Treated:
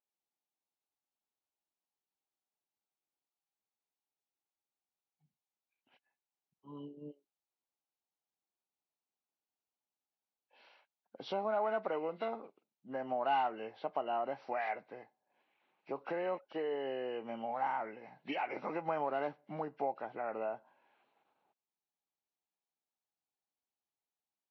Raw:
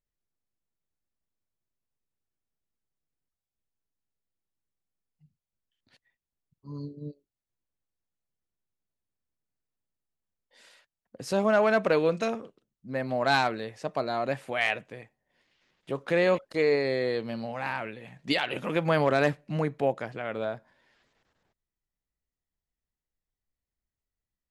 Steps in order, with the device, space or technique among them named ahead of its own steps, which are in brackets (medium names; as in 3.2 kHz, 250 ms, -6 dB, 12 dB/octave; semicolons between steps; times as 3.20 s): hearing aid with frequency lowering (knee-point frequency compression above 1.4 kHz 1.5:1; compression 3:1, threshold -31 dBFS, peak gain reduction 9.5 dB; cabinet simulation 310–5800 Hz, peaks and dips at 500 Hz -3 dB, 820 Hz +9 dB, 1.8 kHz -9 dB, 3.3 kHz -4 dB, 5 kHz -8 dB); trim -3 dB